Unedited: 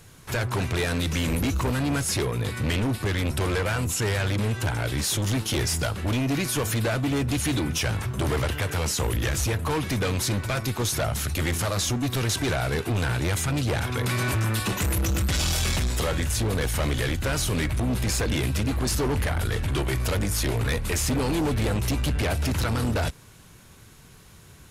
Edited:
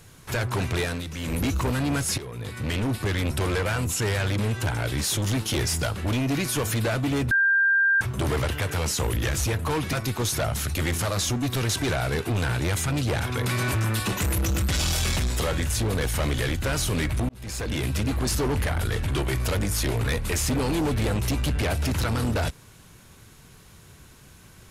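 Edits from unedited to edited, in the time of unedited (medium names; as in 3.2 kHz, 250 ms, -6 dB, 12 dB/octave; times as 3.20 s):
0.79–1.43 s: dip -8.5 dB, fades 0.26 s
2.18–2.94 s: fade in, from -13.5 dB
7.31–8.01 s: bleep 1.59 kHz -17 dBFS
9.93–10.53 s: delete
17.89–18.75 s: fade in equal-power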